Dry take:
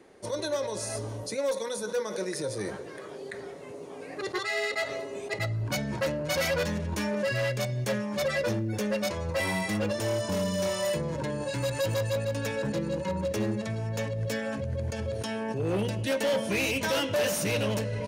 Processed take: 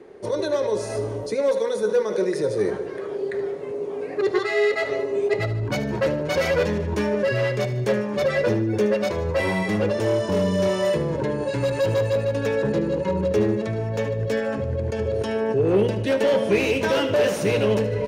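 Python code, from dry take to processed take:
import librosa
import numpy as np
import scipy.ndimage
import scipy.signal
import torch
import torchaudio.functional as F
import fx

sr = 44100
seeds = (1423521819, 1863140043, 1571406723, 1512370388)

y = fx.lowpass(x, sr, hz=2500.0, slope=6)
y = fx.peak_eq(y, sr, hz=410.0, db=10.0, octaves=0.39)
y = fx.echo_feedback(y, sr, ms=75, feedback_pct=51, wet_db=-13)
y = y * librosa.db_to_amplitude(5.5)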